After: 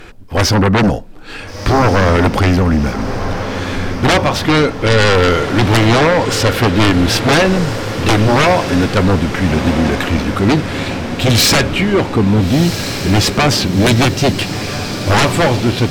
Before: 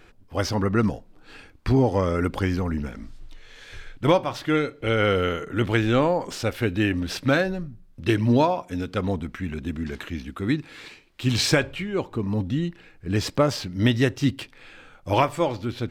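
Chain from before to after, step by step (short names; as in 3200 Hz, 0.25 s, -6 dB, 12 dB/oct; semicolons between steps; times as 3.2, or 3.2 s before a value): sine folder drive 14 dB, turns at -6 dBFS; diffused feedback echo 1.399 s, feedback 61%, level -9 dB; gain -1.5 dB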